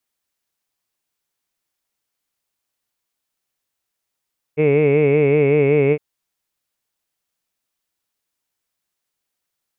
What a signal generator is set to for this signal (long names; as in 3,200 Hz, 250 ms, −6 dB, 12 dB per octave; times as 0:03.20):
vowel from formants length 1.41 s, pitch 147 Hz, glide −0.5 semitones, F1 440 Hz, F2 2,200 Hz, F3 2,600 Hz